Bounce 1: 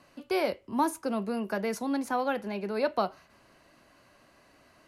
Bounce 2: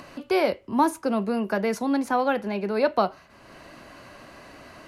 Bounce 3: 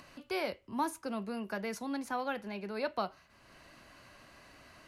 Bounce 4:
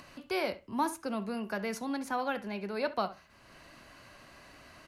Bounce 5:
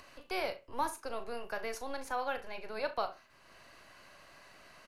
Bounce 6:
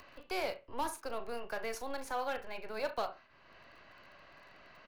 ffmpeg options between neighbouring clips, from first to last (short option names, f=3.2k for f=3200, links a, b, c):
-filter_complex "[0:a]highshelf=f=5.7k:g=-6,asplit=2[a][b];[b]acompressor=mode=upward:threshold=-35dB:ratio=2.5,volume=0dB[c];[a][c]amix=inputs=2:normalize=0"
-af "equalizer=f=420:w=0.38:g=-7,volume=-7dB"
-filter_complex "[0:a]asplit=2[a][b];[b]adelay=67,lowpass=f=2.6k:p=1,volume=-14.5dB,asplit=2[c][d];[d]adelay=67,lowpass=f=2.6k:p=1,volume=0.18[e];[a][c][e]amix=inputs=3:normalize=0,volume=2.5dB"
-filter_complex "[0:a]acrossover=split=340[a][b];[a]aeval=exprs='abs(val(0))':c=same[c];[b]asplit=2[d][e];[e]adelay=38,volume=-11.5dB[f];[d][f]amix=inputs=2:normalize=0[g];[c][g]amix=inputs=2:normalize=0,volume=-2.5dB"
-filter_complex "[0:a]acrossover=split=770|4600[a][b][c];[b]asoftclip=type=hard:threshold=-37dB[d];[c]acrusher=bits=9:mix=0:aa=0.000001[e];[a][d][e]amix=inputs=3:normalize=0"